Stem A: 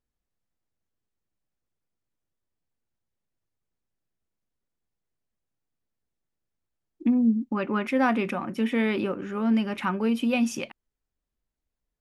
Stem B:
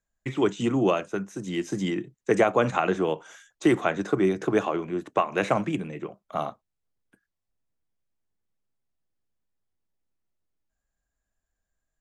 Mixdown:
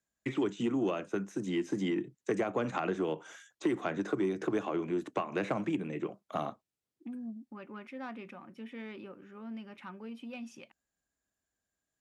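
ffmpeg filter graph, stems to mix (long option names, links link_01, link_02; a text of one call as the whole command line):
ffmpeg -i stem1.wav -i stem2.wav -filter_complex "[0:a]lowpass=frequency=3200:poles=1,asoftclip=type=tanh:threshold=-15dB,volume=-19dB[link_01];[1:a]equalizer=frequency=290:width=1.2:gain=6,acrossover=split=230|2900[link_02][link_03][link_04];[link_02]acompressor=threshold=-35dB:ratio=4[link_05];[link_03]acompressor=threshold=-26dB:ratio=4[link_06];[link_04]acompressor=threshold=-56dB:ratio=4[link_07];[link_05][link_06][link_07]amix=inputs=3:normalize=0,asoftclip=type=tanh:threshold=-15dB,volume=-4.5dB[link_08];[link_01][link_08]amix=inputs=2:normalize=0,highpass=80,aemphasis=mode=reproduction:type=50fm,crystalizer=i=4:c=0" out.wav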